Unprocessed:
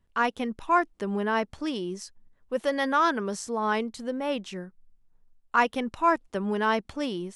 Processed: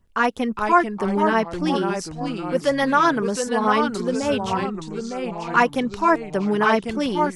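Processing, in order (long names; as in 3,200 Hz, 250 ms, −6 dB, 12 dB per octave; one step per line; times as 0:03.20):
delay with pitch and tempo change per echo 391 ms, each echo −2 semitones, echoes 3, each echo −6 dB
0:04.22–0:04.64: noise in a band 77–130 Hz −46 dBFS
auto-filter notch sine 8.2 Hz 630–4,000 Hz
level +7 dB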